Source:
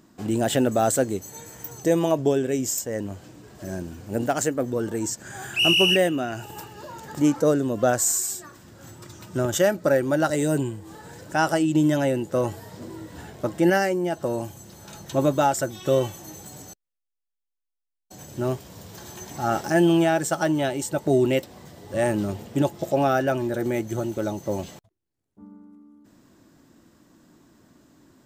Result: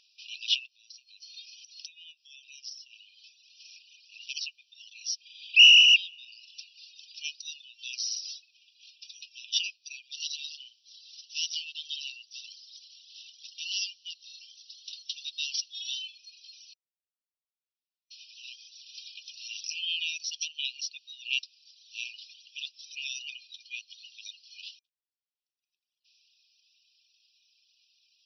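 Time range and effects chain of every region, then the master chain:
0.66–2.90 s: treble shelf 3.5 kHz +6.5 dB + compression 10:1, threshold -32 dBFS
10.12–16.02 s: CVSD coder 64 kbps + treble shelf 7.6 kHz +10 dB + band-stop 2.5 kHz, Q 5
whole clip: FFT band-pass 2.4–5.9 kHz; reverb removal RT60 1.2 s; trim +7 dB

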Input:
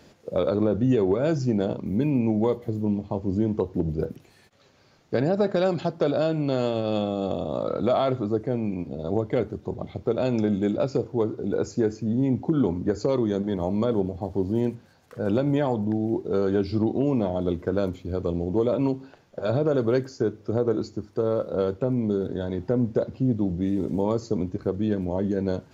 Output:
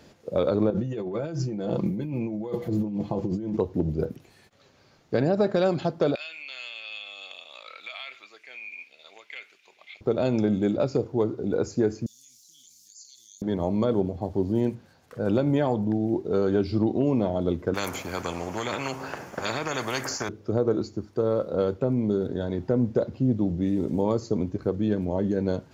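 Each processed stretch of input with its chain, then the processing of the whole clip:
0.70–3.57 s: comb 5.9 ms, depth 63% + compressor with a negative ratio -29 dBFS
6.15–10.01 s: resonant high-pass 2.4 kHz, resonance Q 6.5 + compression 2.5:1, threshold -36 dBFS
12.06–13.42 s: inverse Chebyshev high-pass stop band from 1.4 kHz, stop band 70 dB + level flattener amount 70%
17.74–20.29 s: high-pass 280 Hz 6 dB/octave + peaking EQ 3.8 kHz -14 dB 0.84 oct + spectrum-flattening compressor 4:1
whole clip: none

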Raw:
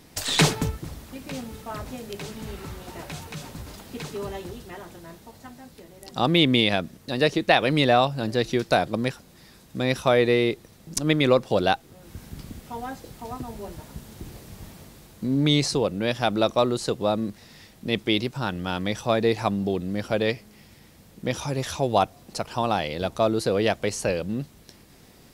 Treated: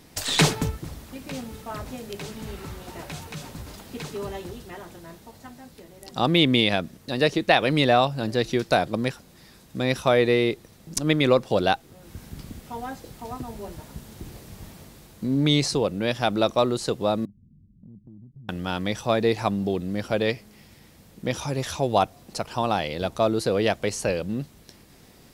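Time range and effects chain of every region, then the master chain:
17.25–18.49 s: inverse Chebyshev low-pass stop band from 750 Hz, stop band 60 dB + compression 5:1, threshold -44 dBFS
whole clip: none

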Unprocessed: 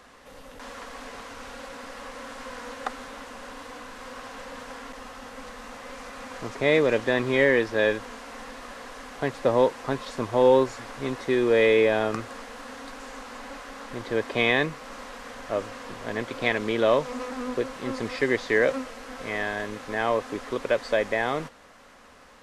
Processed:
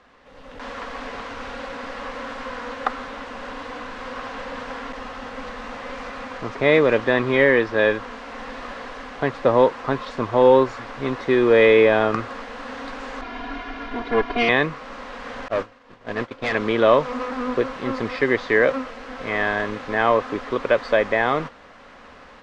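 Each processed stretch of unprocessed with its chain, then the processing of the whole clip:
13.21–14.49 s: comb filter that takes the minimum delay 4.2 ms + distance through air 150 m + comb 2.9 ms, depth 99%
15.48–16.55 s: expander -28 dBFS + overload inside the chain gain 25.5 dB
whole clip: low-pass 3.9 kHz 12 dB/octave; dynamic bell 1.2 kHz, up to +4 dB, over -42 dBFS, Q 2.4; level rider gain up to 10 dB; trim -2.5 dB

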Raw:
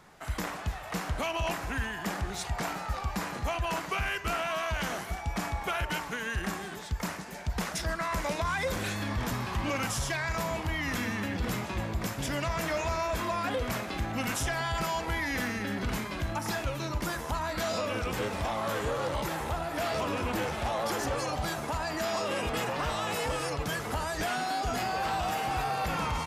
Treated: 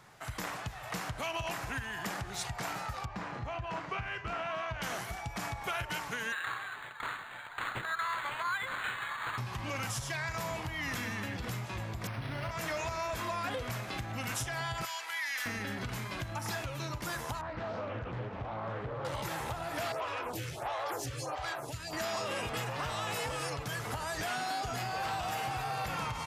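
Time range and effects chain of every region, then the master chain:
3.05–4.82 s: tape spacing loss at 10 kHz 23 dB + doubling 34 ms -13 dB
6.32–9.38 s: resonant high-pass 1.3 kHz, resonance Q 2.2 + decimation joined by straight lines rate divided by 8×
12.07–12.51 s: treble shelf 7.8 kHz -4.5 dB + flutter echo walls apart 11 m, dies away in 1.2 s + decimation joined by straight lines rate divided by 6×
14.85–15.46 s: high-pass 1.4 kHz + transformer saturation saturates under 1 kHz
17.41–19.05 s: tape spacing loss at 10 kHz 43 dB + loudspeaker Doppler distortion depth 0.58 ms
19.92–21.93 s: high-pass 44 Hz + peaking EQ 210 Hz -13 dB 0.38 oct + lamp-driven phase shifter 1.5 Hz
whole clip: peaking EQ 120 Hz +14.5 dB 0.41 oct; compression, threshold -29 dBFS; bass shelf 460 Hz -7.5 dB

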